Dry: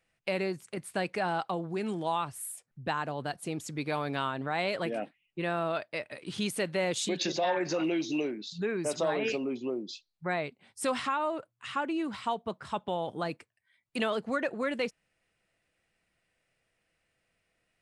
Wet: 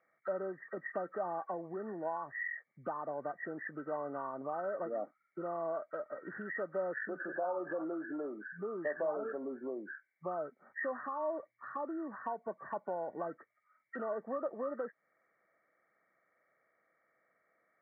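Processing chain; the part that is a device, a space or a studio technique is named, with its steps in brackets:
hearing aid with frequency lowering (hearing-aid frequency compression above 1,100 Hz 4 to 1; downward compressor 2.5 to 1, threshold −41 dBFS, peak gain reduction 11.5 dB; loudspeaker in its box 280–5,200 Hz, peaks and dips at 600 Hz +6 dB, 1,400 Hz −10 dB, 2,800 Hz +9 dB)
level +1.5 dB

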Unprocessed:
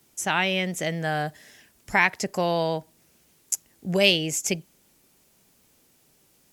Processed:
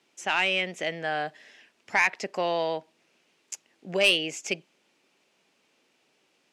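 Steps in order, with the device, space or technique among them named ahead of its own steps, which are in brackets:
intercom (band-pass filter 310–4,400 Hz; parametric band 2,600 Hz +5.5 dB 0.52 octaves; soft clipping −11 dBFS, distortion −14 dB)
level −1.5 dB

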